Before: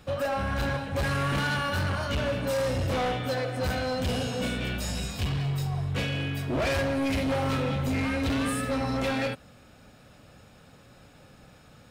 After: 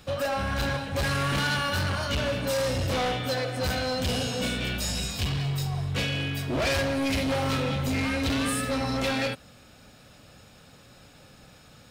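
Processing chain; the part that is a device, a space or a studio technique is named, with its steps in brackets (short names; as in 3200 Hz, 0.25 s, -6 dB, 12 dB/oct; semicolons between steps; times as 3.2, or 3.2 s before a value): presence and air boost (bell 4700 Hz +5.5 dB 1.8 oct; high shelf 11000 Hz +6.5 dB)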